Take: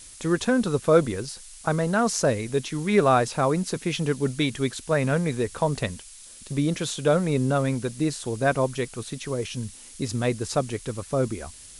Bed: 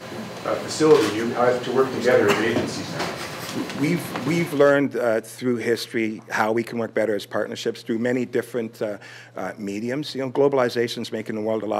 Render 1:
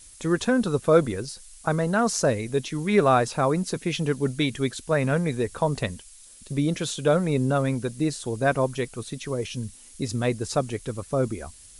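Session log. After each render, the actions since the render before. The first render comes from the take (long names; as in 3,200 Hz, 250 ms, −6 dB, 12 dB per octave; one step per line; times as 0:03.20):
broadband denoise 6 dB, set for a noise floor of −46 dBFS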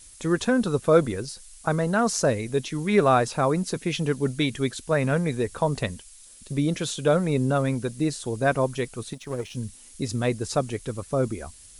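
0:09.13–0:09.55: power curve on the samples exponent 1.4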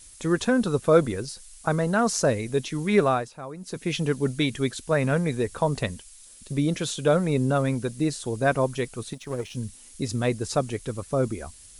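0:02.98–0:03.91: duck −15 dB, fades 0.32 s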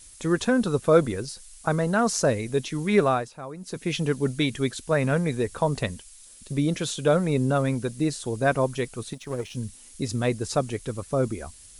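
no processing that can be heard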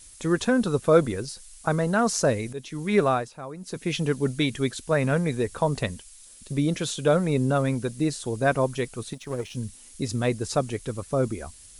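0:02.53–0:03.20: fade in equal-power, from −13 dB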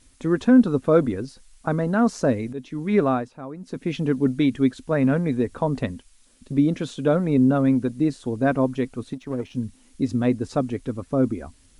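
low-pass filter 1,900 Hz 6 dB per octave
parametric band 260 Hz +10.5 dB 0.43 octaves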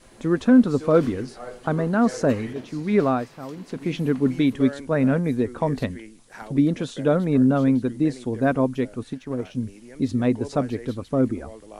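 mix in bed −18.5 dB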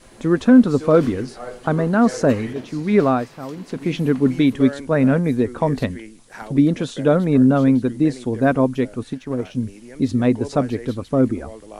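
level +4 dB
brickwall limiter −3 dBFS, peak gain reduction 1.5 dB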